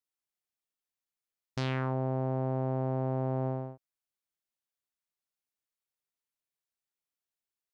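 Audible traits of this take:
background noise floor −93 dBFS
spectral slope −7.5 dB per octave

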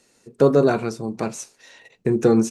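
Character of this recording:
background noise floor −62 dBFS
spectral slope −6.0 dB per octave

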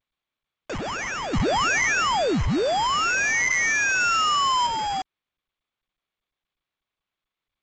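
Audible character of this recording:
aliases and images of a low sample rate 4,100 Hz, jitter 0%
sample-and-hold tremolo 1.5 Hz, depth 70%
a quantiser's noise floor 6 bits, dither none
G.722

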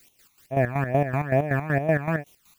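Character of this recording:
a quantiser's noise floor 10 bits, dither triangular
phaser sweep stages 12, 2.3 Hz, lowest notch 520–1,600 Hz
chopped level 5.3 Hz, depth 65%, duty 45%

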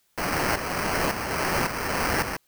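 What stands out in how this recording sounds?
aliases and images of a low sample rate 3,600 Hz, jitter 0%
tremolo saw up 1.8 Hz, depth 65%
a quantiser's noise floor 12 bits, dither triangular

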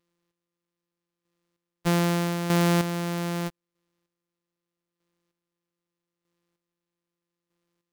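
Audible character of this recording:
a buzz of ramps at a fixed pitch in blocks of 256 samples
chopped level 0.8 Hz, depth 60%, duty 25%

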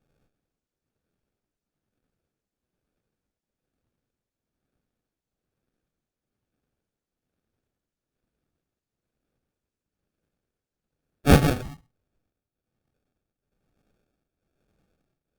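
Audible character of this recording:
tremolo triangle 1.1 Hz, depth 85%
aliases and images of a low sample rate 1,000 Hz, jitter 0%
Opus

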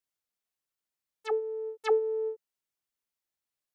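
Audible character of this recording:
background noise floor −90 dBFS
spectral slope −4.0 dB per octave

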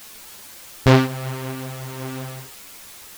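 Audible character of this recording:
tremolo triangle 0.96 Hz, depth 50%
a quantiser's noise floor 8 bits, dither triangular
a shimmering, thickened sound

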